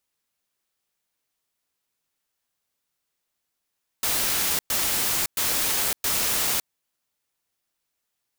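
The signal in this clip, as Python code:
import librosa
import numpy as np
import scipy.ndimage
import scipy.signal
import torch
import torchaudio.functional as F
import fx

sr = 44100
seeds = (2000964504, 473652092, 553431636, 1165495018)

y = fx.noise_burst(sr, seeds[0], colour='white', on_s=0.56, off_s=0.11, bursts=4, level_db=-24.0)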